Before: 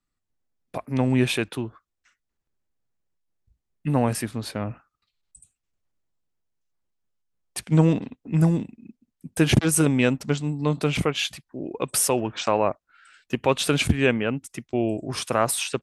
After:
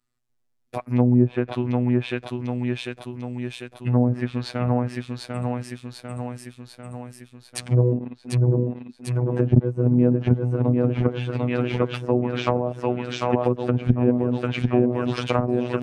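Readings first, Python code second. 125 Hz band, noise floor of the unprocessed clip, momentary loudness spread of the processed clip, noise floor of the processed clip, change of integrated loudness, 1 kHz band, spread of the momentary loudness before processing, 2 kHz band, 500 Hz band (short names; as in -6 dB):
+4.5 dB, -81 dBFS, 15 LU, -60 dBFS, +0.5 dB, -0.5 dB, 14 LU, -5.0 dB, +2.5 dB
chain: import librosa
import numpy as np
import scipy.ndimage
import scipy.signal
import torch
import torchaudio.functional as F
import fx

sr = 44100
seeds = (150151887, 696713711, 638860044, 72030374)

y = fx.echo_feedback(x, sr, ms=746, feedback_pct=58, wet_db=-4.5)
y = fx.env_lowpass_down(y, sr, base_hz=450.0, full_db=-16.5)
y = fx.robotise(y, sr, hz=123.0)
y = y * 10.0 ** (4.5 / 20.0)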